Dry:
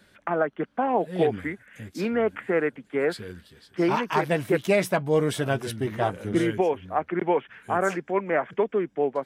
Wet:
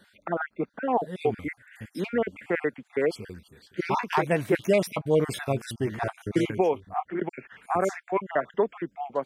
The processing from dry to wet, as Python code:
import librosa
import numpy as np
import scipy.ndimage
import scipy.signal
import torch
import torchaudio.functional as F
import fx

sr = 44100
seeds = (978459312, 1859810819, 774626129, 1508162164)

y = fx.spec_dropout(x, sr, seeds[0], share_pct=36)
y = fx.detune_double(y, sr, cents=fx.line((6.77, 20.0), (7.19, 38.0)), at=(6.77, 7.19), fade=0.02)